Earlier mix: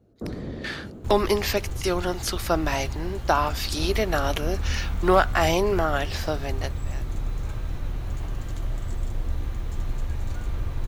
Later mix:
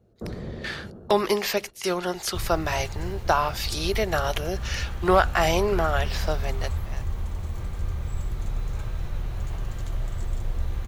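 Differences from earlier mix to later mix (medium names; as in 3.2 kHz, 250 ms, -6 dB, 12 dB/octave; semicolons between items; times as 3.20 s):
second sound: entry +1.30 s; master: add peaking EQ 280 Hz -14.5 dB 0.21 oct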